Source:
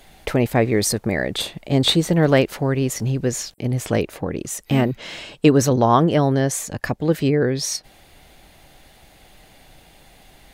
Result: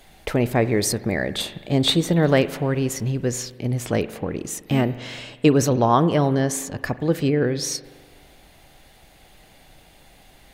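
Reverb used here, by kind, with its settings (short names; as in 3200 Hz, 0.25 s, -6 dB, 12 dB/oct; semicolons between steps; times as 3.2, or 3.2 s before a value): spring tank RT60 1.6 s, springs 41 ms, chirp 60 ms, DRR 14 dB; gain -2 dB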